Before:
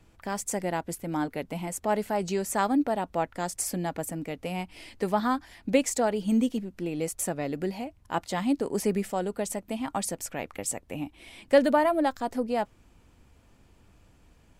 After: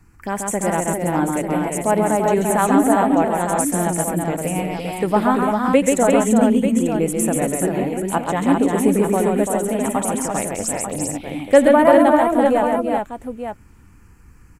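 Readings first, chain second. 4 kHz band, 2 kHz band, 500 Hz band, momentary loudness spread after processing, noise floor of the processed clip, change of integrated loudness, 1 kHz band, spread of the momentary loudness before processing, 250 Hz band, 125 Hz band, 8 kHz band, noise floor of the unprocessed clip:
+4.5 dB, +10.0 dB, +11.5 dB, 9 LU, -47 dBFS, +11.0 dB, +11.0 dB, 10 LU, +11.5 dB, +11.5 dB, +10.0 dB, -60 dBFS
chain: envelope phaser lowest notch 540 Hz, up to 4900 Hz, full sweep at -29.5 dBFS; tapped delay 83/135/340/397/891 ms -19/-3.5/-5/-4.5/-8.5 dB; gain +8 dB

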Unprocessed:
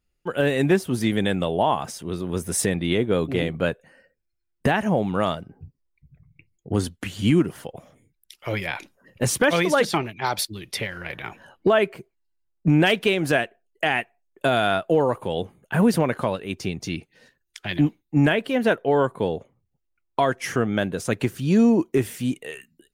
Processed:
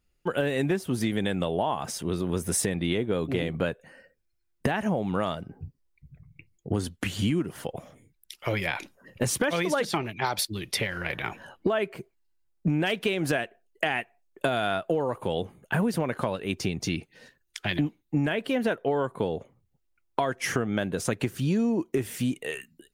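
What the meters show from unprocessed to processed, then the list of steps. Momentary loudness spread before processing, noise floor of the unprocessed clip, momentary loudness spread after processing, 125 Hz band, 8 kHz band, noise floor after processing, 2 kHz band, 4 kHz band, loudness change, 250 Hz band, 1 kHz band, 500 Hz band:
12 LU, -75 dBFS, 9 LU, -5.0 dB, -2.0 dB, -73 dBFS, -5.0 dB, -4.0 dB, -5.5 dB, -5.5 dB, -5.5 dB, -6.0 dB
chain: compressor 5:1, threshold -26 dBFS, peak gain reduction 11.5 dB; gain +2.5 dB

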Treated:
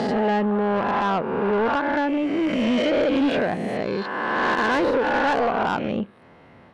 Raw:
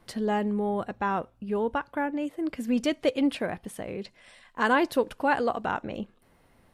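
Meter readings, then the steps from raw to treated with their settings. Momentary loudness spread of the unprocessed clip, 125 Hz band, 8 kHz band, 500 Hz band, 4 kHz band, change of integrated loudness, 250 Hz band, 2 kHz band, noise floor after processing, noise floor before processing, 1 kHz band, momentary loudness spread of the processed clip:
13 LU, +7.5 dB, n/a, +7.0 dB, +7.0 dB, +6.0 dB, +6.0 dB, +7.0 dB, -50 dBFS, -63 dBFS, +6.5 dB, 6 LU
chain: spectral swells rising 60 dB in 1.60 s; in parallel at -2 dB: compressor, threshold -35 dBFS, peak gain reduction 18 dB; on the sum: limiter -13 dBFS, peak gain reduction 7 dB; BPF 110–2900 Hz; soft clip -21.5 dBFS, distortion -13 dB; gain +5.5 dB

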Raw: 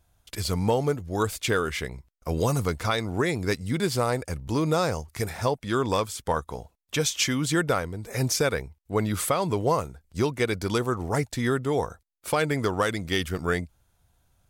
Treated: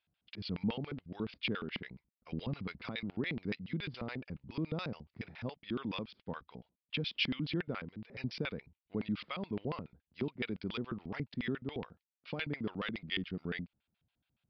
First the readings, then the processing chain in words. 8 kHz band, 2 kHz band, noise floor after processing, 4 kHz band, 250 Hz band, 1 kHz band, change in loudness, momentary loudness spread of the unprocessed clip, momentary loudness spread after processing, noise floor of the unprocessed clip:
under -40 dB, -11.0 dB, under -85 dBFS, -9.0 dB, -9.5 dB, -19.5 dB, -13.0 dB, 8 LU, 10 LU, -69 dBFS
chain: LFO band-pass square 7.1 Hz 210–2700 Hz; downsampling 11025 Hz; gain -3 dB

